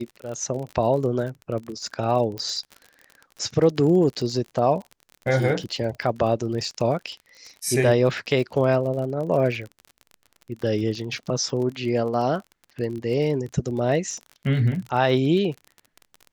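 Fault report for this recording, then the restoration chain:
crackle 36 per s -31 dBFS
2.38 s: pop -18 dBFS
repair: de-click

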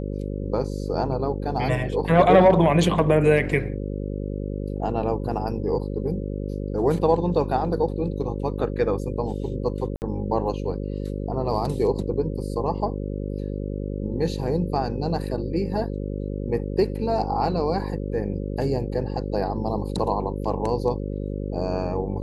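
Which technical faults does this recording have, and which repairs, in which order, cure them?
buzz 50 Hz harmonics 11 -29 dBFS
9.96–10.02 s: dropout 59 ms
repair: de-hum 50 Hz, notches 11; interpolate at 9.96 s, 59 ms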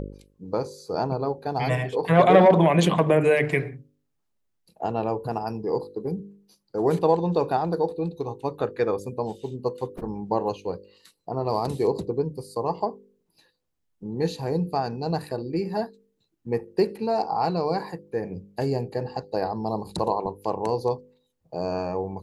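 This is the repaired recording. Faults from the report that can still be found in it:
nothing left

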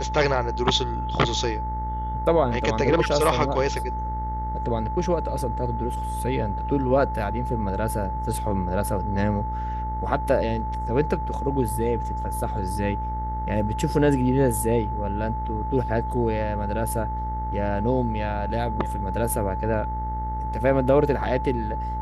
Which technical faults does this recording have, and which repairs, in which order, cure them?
buzz 60 Hz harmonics 35 -30 dBFS
whine 870 Hz -29 dBFS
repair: de-hum 60 Hz, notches 35; band-stop 870 Hz, Q 30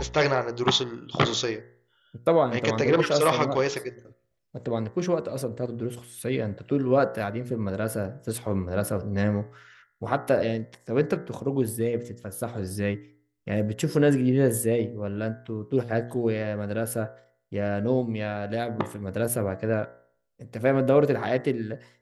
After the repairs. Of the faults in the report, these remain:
nothing left

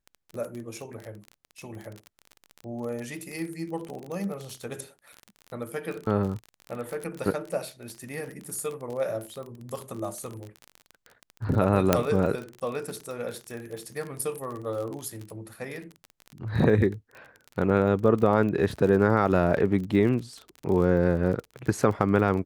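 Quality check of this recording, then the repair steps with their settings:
crackle 34 per s -32 dBFS
11.93 s: pop -4 dBFS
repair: de-click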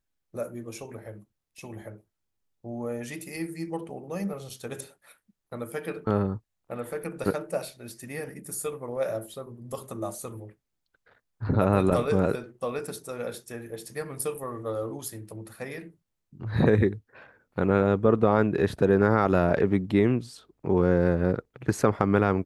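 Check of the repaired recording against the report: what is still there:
nothing left

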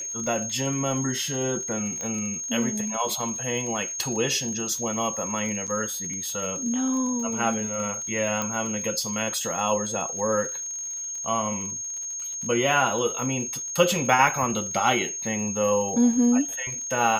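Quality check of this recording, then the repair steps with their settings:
crackle 46 per s -33 dBFS
whine 6.5 kHz -30 dBFS
2.01 s: pop -18 dBFS
5.67–5.68 s: dropout 7.3 ms
8.42 s: pop -13 dBFS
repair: de-click; band-stop 6.5 kHz, Q 30; interpolate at 5.67 s, 7.3 ms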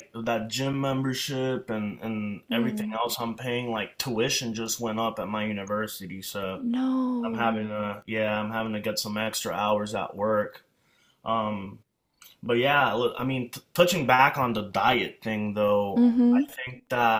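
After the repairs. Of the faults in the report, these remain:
nothing left

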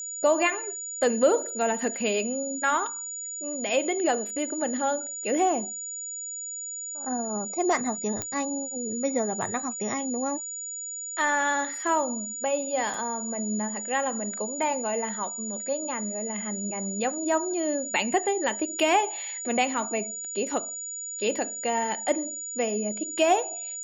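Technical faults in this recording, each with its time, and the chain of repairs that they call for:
whine 6.9 kHz -33 dBFS
8.22 s: pop -15 dBFS
12.94 s: dropout 3.1 ms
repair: de-click; band-stop 6.9 kHz, Q 30; interpolate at 12.94 s, 3.1 ms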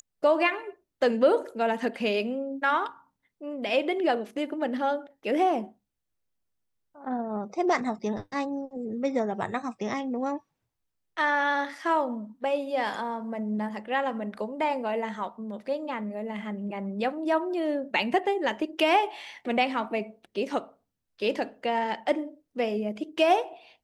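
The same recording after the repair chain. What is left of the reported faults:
nothing left

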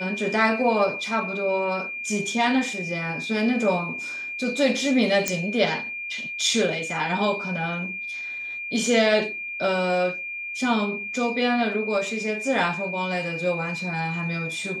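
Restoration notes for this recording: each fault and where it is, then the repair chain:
whine 2.4 kHz -30 dBFS
5.28 s: pop -6 dBFS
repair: de-click; band-stop 2.4 kHz, Q 30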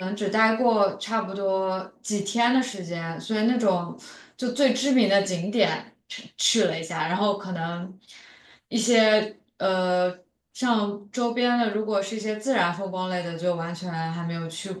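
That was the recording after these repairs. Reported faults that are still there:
nothing left

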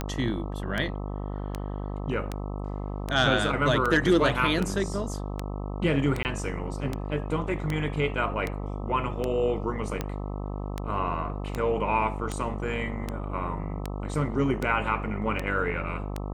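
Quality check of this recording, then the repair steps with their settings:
buzz 50 Hz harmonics 26 -33 dBFS
tick 78 rpm -15 dBFS
6.23–6.25 s: dropout 19 ms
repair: de-click; de-hum 50 Hz, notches 26; interpolate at 6.23 s, 19 ms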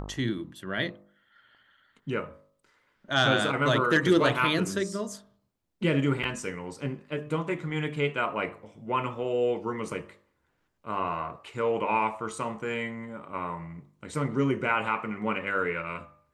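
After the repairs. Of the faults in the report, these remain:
nothing left

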